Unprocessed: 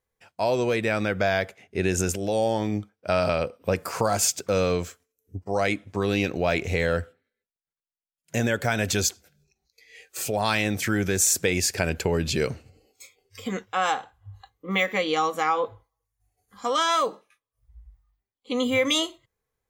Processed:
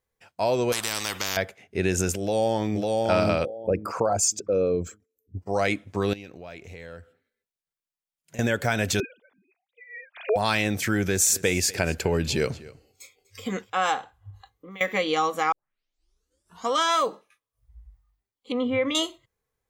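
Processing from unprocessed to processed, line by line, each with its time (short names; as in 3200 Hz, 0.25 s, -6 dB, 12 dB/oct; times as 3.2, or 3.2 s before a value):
0.72–1.37 spectral compressor 10:1
2.2–2.93 echo throw 0.55 s, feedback 25%, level -1.5 dB
3.45–5.37 formant sharpening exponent 2
6.13–8.39 compressor 2:1, threshold -52 dBFS
9–10.36 sine-wave speech
11.05–13.7 echo 0.246 s -20 dB
14.3–14.81 compressor 4:1, threshold -42 dBFS
15.52 tape start 1.17 s
18.52–18.95 air absorption 460 m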